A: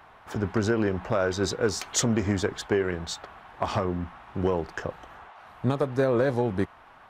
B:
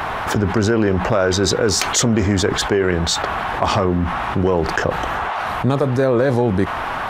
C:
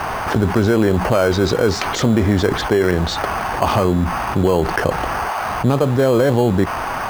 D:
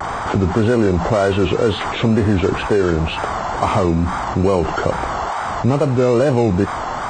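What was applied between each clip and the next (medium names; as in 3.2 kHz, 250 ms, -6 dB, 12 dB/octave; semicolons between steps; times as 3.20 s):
level flattener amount 70%; trim +5.5 dB
low-pass 4 kHz 12 dB/octave; in parallel at -7 dB: sample-and-hold 12×; on the sum: trim -1.5 dB
knee-point frequency compression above 1.2 kHz 1.5:1; wow and flutter 110 cents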